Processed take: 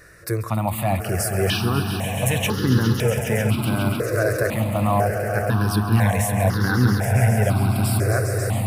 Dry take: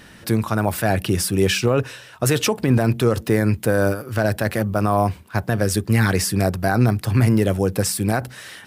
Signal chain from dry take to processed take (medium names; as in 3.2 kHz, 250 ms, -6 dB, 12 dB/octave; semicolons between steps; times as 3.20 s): echo with a slow build-up 136 ms, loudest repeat 5, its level -11 dB; stepped phaser 2 Hz 860–2400 Hz